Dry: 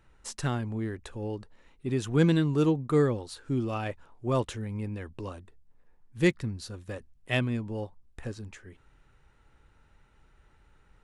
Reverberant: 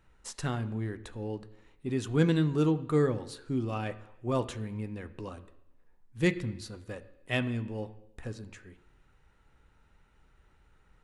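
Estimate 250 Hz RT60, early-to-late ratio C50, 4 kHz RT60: 0.85 s, 15.5 dB, 0.90 s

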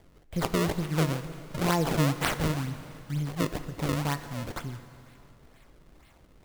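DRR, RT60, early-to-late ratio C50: 10.5 dB, 2.7 s, 11.5 dB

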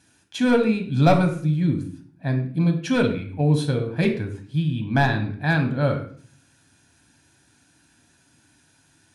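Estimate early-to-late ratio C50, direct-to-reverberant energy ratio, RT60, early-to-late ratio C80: 9.5 dB, 4.0 dB, 0.50 s, 13.0 dB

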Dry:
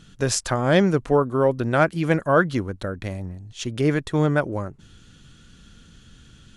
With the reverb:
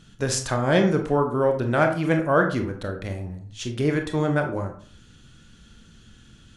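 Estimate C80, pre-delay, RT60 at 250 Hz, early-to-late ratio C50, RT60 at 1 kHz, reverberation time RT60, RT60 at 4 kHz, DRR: 13.5 dB, 24 ms, 0.50 s, 8.5 dB, 0.45 s, 0.45 s, 0.30 s, 4.0 dB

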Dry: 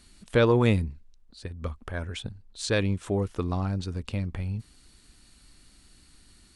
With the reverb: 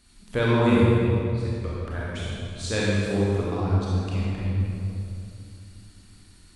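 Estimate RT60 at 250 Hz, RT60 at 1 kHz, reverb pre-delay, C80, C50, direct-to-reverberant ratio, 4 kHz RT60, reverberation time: 3.2 s, 2.5 s, 27 ms, -2.0 dB, -4.5 dB, -7.0 dB, 1.9 s, 2.7 s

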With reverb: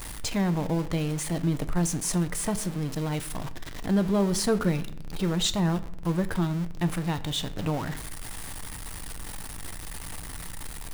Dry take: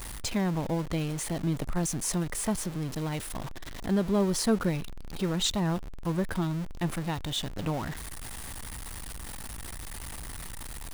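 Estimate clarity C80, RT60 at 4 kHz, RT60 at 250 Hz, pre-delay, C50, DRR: 18.0 dB, 0.50 s, 1.1 s, 6 ms, 16.0 dB, 10.0 dB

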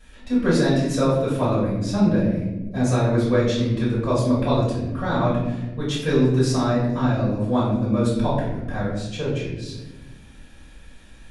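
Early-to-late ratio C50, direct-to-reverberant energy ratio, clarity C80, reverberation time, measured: 2.0 dB, -10.5 dB, 4.5 dB, not exponential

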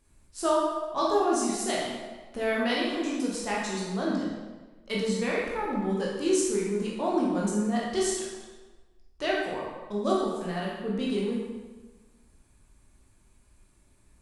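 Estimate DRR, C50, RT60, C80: -5.0 dB, 0.0 dB, 1.3 s, 3.0 dB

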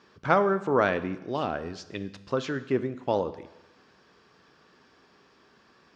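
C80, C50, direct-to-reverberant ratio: 16.5 dB, 14.5 dB, 12.0 dB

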